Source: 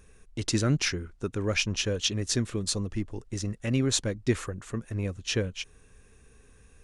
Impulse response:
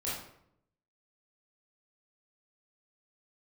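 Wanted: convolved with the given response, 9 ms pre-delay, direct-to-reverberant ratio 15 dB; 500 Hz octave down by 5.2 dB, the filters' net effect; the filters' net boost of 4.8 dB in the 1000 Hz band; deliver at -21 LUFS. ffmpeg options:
-filter_complex "[0:a]equalizer=f=500:t=o:g=-8.5,equalizer=f=1k:t=o:g=8.5,asplit=2[a][b];[1:a]atrim=start_sample=2205,adelay=9[c];[b][c]afir=irnorm=-1:irlink=0,volume=-19dB[d];[a][d]amix=inputs=2:normalize=0,volume=8.5dB"

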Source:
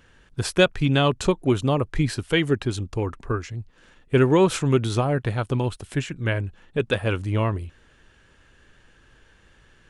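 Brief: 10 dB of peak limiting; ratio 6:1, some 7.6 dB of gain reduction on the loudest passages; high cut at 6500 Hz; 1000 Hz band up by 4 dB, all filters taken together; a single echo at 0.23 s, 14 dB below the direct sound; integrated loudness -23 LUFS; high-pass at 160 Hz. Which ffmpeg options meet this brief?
-af "highpass=160,lowpass=6.5k,equalizer=f=1k:t=o:g=5,acompressor=threshold=-20dB:ratio=6,alimiter=limit=-19dB:level=0:latency=1,aecho=1:1:230:0.2,volume=9dB"

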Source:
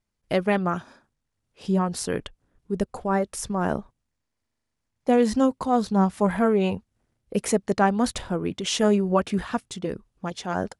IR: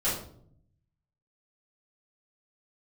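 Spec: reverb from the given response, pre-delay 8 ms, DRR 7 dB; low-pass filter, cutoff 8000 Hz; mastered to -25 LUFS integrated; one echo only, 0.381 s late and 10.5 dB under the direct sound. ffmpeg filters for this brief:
-filter_complex "[0:a]lowpass=8k,aecho=1:1:381:0.299,asplit=2[a][b];[1:a]atrim=start_sample=2205,adelay=8[c];[b][c]afir=irnorm=-1:irlink=0,volume=-16.5dB[d];[a][d]amix=inputs=2:normalize=0,volume=-1.5dB"

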